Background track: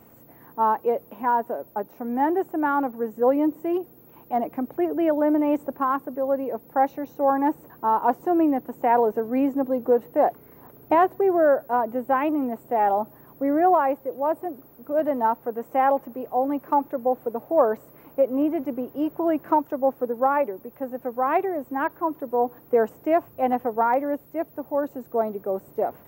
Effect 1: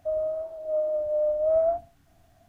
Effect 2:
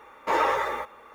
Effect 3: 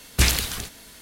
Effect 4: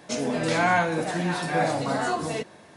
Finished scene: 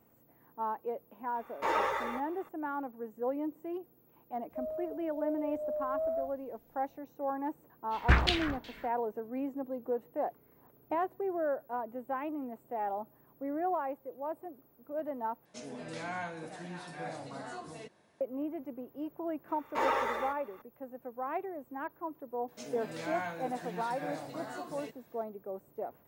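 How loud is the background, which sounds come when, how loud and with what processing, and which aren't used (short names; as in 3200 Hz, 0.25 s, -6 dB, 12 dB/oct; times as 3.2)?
background track -14 dB
1.35 add 2 -7 dB
4.5 add 1 -11 dB
7.9 add 3 -4 dB, fades 0.05 s + LFO low-pass saw down 2.7 Hz 820–3800 Hz
15.45 replace with 4 -17 dB
19.48 add 2 -7 dB
22.48 add 4 -16.5 dB + HPF 110 Hz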